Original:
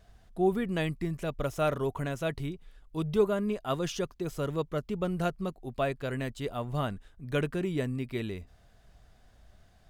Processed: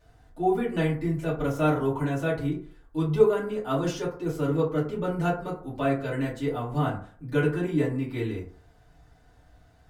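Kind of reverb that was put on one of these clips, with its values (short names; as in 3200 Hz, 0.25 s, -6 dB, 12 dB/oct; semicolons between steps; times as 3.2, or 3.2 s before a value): FDN reverb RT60 0.48 s, low-frequency decay 0.9×, high-frequency decay 0.4×, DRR -9 dB; gain -6 dB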